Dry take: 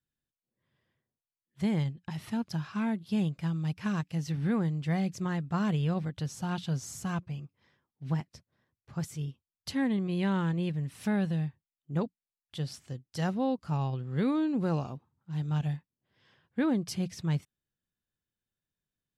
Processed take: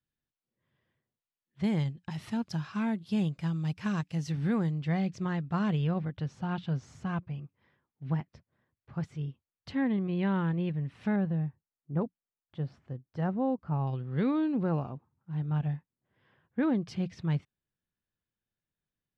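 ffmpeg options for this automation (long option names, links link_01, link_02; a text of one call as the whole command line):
ffmpeg -i in.wav -af "asetnsamples=nb_out_samples=441:pad=0,asendcmd='1.64 lowpass f 9100;4.71 lowpass f 4300;5.87 lowpass f 2600;11.16 lowpass f 1400;13.87 lowpass f 3400;14.63 lowpass f 2000;16.63 lowpass f 3200',lowpass=3800" out.wav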